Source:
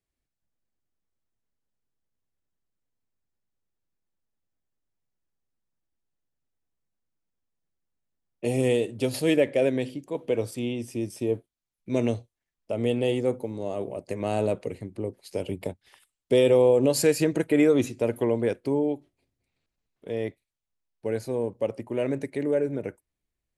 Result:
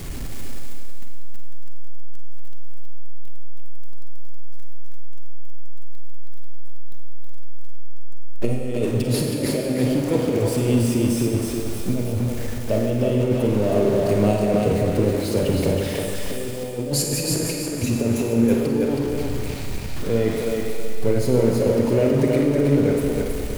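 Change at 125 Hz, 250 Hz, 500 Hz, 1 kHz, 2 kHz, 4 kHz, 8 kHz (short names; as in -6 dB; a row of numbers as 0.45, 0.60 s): +11.5, +7.0, +3.5, +5.5, +3.0, +6.5, +9.5 dB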